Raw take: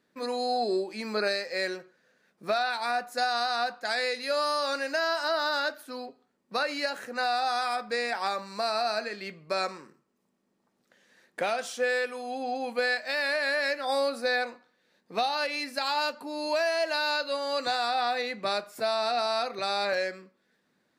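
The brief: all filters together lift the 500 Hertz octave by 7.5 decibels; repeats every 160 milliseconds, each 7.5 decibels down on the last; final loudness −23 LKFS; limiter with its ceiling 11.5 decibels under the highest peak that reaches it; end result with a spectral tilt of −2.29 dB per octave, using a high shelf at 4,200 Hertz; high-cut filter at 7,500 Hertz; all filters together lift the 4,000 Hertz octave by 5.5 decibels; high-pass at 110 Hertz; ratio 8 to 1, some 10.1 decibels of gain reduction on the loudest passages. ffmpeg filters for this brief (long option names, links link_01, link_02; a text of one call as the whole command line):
ffmpeg -i in.wav -af "highpass=110,lowpass=7500,equalizer=frequency=500:width_type=o:gain=9,equalizer=frequency=4000:width_type=o:gain=3,highshelf=frequency=4200:gain=6,acompressor=threshold=-26dB:ratio=8,alimiter=level_in=3dB:limit=-24dB:level=0:latency=1,volume=-3dB,aecho=1:1:160|320|480|640|800:0.422|0.177|0.0744|0.0312|0.0131,volume=12dB" out.wav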